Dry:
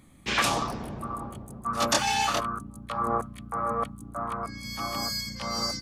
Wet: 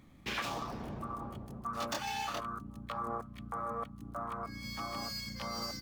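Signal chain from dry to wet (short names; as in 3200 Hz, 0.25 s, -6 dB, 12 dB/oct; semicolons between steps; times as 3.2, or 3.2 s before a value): median filter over 5 samples; compressor 2.5:1, threshold -35 dBFS, peak gain reduction 10.5 dB; gain -3 dB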